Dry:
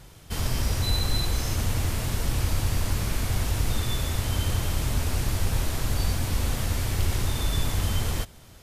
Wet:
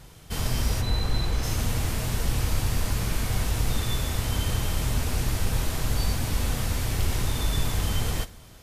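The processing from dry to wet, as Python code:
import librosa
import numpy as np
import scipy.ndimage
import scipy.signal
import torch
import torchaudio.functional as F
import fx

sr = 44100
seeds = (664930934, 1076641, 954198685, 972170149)

y = fx.high_shelf(x, sr, hz=fx.line((0.8, 3500.0), (1.42, 5700.0)), db=-11.0, at=(0.8, 1.42), fade=0.02)
y = fx.rev_double_slope(y, sr, seeds[0], early_s=0.28, late_s=1.7, knee_db=-18, drr_db=10.0)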